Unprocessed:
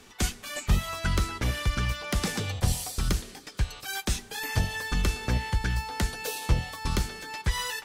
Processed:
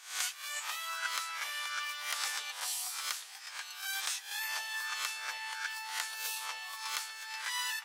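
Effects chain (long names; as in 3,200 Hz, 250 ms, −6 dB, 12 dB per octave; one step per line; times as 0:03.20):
peak hold with a rise ahead of every peak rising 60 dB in 0.48 s
high-pass filter 930 Hz 24 dB per octave
level −4 dB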